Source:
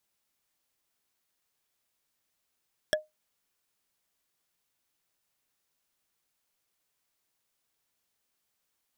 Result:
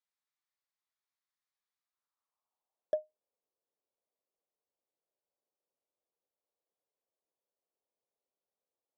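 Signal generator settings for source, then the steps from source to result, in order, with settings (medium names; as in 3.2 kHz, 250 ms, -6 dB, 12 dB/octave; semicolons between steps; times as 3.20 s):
wood hit, lowest mode 616 Hz, decay 0.18 s, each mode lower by 1 dB, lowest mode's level -19.5 dB
high-order bell 2.1 kHz -10.5 dB 1.3 oct; band-pass sweep 1.9 kHz -> 510 Hz, 1.78–3.04 s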